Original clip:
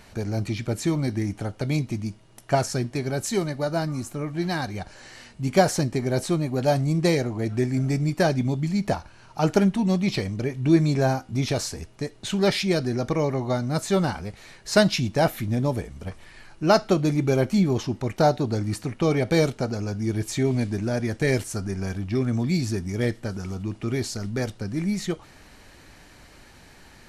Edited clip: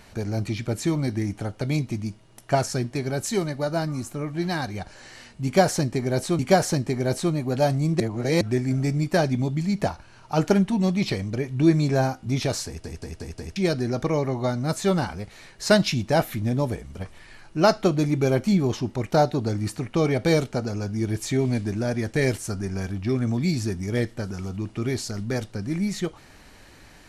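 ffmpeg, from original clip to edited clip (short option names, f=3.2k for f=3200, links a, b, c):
-filter_complex "[0:a]asplit=9[a][b][c][d][e][f][g][h][i];[a]atrim=end=6.392[j];[b]atrim=start=5.448:end=7.062[k];[c]atrim=start=7.058:end=7.472,asetpts=PTS-STARTPTS,areverse[l];[d]atrim=start=7.468:end=11.902[m];[e]atrim=start=11.718:end=11.902[n];[f]atrim=start=11.718:end=11.902[o];[g]atrim=start=11.718:end=11.902[p];[h]atrim=start=11.718:end=11.902[q];[i]atrim=start=12.618[r];[j][k]acrossfade=d=0.004:c1=hsin:c2=hsin[s];[s][l]acrossfade=d=0.004:c1=hsin:c2=hsin[t];[t][m]acrossfade=d=0.004:c1=hsin:c2=hsin[u];[u][n]acrossfade=d=0.004:c1=hsin:c2=hsin[v];[v][o]acrossfade=d=0.004:c1=hsin:c2=hsin[w];[w][p]acrossfade=d=0.004:c1=hsin:c2=hsin[x];[x][q]acrossfade=d=0.004:c1=hsin:c2=hsin[y];[y][r]acrossfade=d=0.004:c1=hsin:c2=hsin"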